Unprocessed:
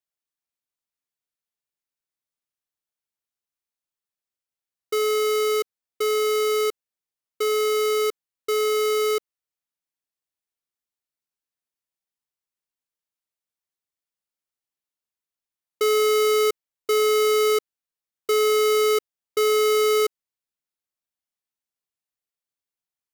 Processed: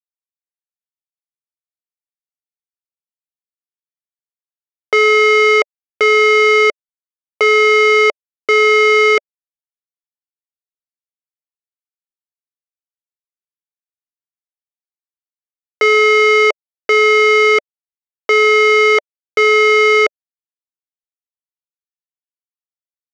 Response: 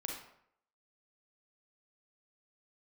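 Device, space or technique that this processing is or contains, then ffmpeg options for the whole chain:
hand-held game console: -af "acrusher=bits=3:mix=0:aa=0.000001,highpass=470,equalizer=f=590:t=q:w=4:g=6,equalizer=f=2.1k:t=q:w=4:g=10,equalizer=f=4k:t=q:w=4:g=-9,lowpass=f=5.4k:w=0.5412,lowpass=f=5.4k:w=1.3066,volume=7.5dB"

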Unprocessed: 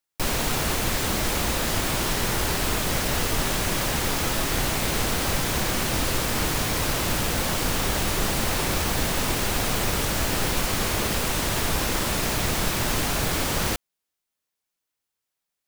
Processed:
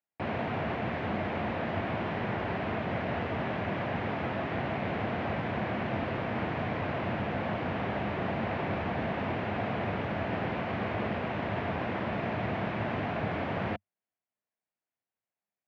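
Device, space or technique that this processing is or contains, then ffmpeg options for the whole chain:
bass cabinet: -af "highpass=f=89:w=0.5412,highpass=f=89:w=1.3066,equalizer=f=97:t=q:w=4:g=4,equalizer=f=210:t=q:w=4:g=5,equalizer=f=680:t=q:w=4:g=7,equalizer=f=1.3k:t=q:w=4:g=-3,lowpass=f=2.4k:w=0.5412,lowpass=f=2.4k:w=1.3066,volume=-6dB"

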